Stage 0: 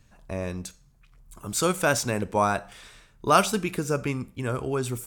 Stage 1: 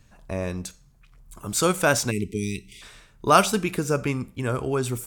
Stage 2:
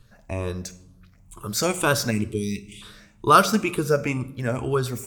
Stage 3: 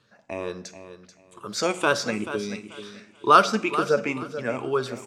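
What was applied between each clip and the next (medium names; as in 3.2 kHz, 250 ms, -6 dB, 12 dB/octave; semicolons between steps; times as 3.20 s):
spectral selection erased 2.11–2.82 s, 450–1900 Hz; trim +2.5 dB
drifting ripple filter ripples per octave 0.63, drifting +2.1 Hz, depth 10 dB; reverberation RT60 0.95 s, pre-delay 9 ms, DRR 12.5 dB; trim -1 dB
band-pass 260–5300 Hz; on a send: feedback delay 435 ms, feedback 23%, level -12 dB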